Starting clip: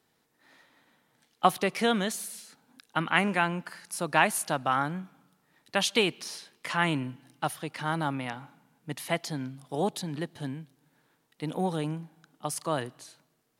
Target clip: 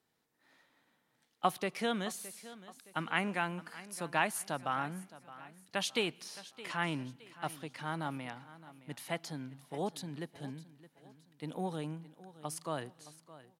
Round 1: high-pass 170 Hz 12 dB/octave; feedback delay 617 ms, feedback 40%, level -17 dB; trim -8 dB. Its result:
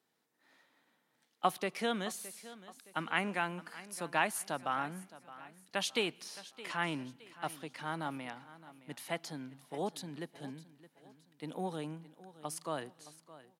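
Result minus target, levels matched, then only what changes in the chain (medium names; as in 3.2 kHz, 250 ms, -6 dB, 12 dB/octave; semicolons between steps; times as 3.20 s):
125 Hz band -3.5 dB
remove: high-pass 170 Hz 12 dB/octave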